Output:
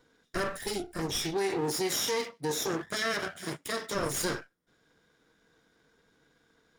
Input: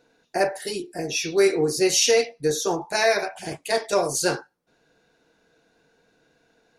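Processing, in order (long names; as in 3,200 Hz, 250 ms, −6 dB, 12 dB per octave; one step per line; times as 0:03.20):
lower of the sound and its delayed copy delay 0.57 ms
0:01.34–0:03.95: high-pass filter 140 Hz 12 dB per octave
brickwall limiter −19 dBFS, peak gain reduction 9.5 dB
level −2.5 dB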